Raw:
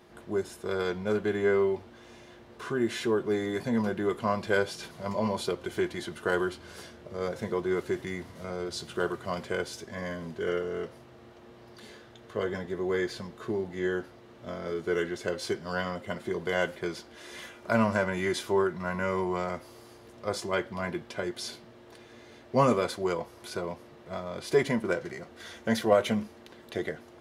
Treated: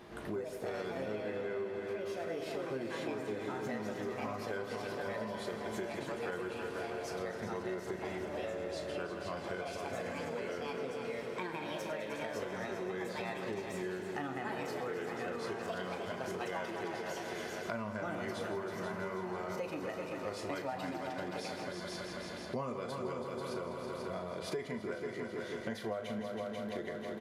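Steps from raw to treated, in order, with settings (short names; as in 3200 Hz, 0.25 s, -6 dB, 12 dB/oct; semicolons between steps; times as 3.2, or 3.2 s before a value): tone controls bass 0 dB, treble -4 dB; multi-head echo 0.163 s, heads all three, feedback 57%, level -11.5 dB; echoes that change speed 0.117 s, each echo +4 st, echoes 2; downsampling 32000 Hz; flutter echo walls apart 6.5 m, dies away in 0.22 s; compressor 6:1, threshold -41 dBFS, peak gain reduction 22 dB; gain +3.5 dB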